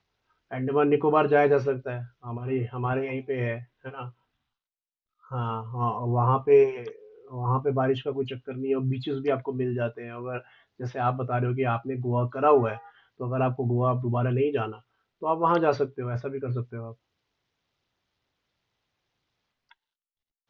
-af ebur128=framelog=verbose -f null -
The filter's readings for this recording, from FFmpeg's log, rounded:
Integrated loudness:
  I:         -26.4 LUFS
  Threshold: -37.2 LUFS
Loudness range:
  LRA:         7.5 LU
  Threshold: -48.0 LUFS
  LRA low:   -33.1 LUFS
  LRA high:  -25.6 LUFS